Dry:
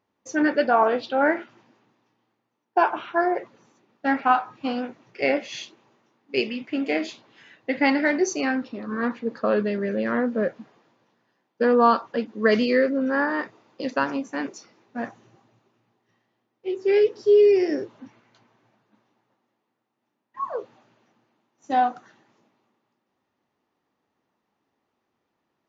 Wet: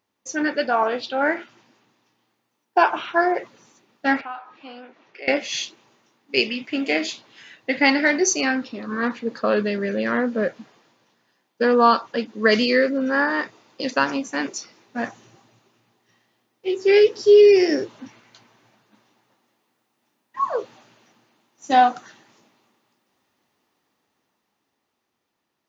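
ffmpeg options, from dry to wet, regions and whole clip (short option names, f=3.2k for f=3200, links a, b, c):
-filter_complex "[0:a]asettb=1/sr,asplit=3[a][b][c];[a]atrim=end=4.214[d];[b]atrim=start=4.21:end=5.28,asetpts=PTS-STARTPTS,afade=t=in:d=0.004:c=qsin,afade=t=out:st=1.066:d=0.004:c=qsin,acompressor=threshold=-46dB:ratio=2:attack=3.2:release=140:knee=1:detection=peak,highpass=310,lowpass=3.2k[e];[c]atrim=start=5.276[f];[d][e]acrossfade=d=0.004:c1=hsin:c2=qsin[g];[g][f]acrossfade=d=0.004:c1=qsin:c2=hsin,highshelf=f=2.5k:g=11.5,dynaudnorm=f=180:g=21:m=9.5dB,volume=-3dB"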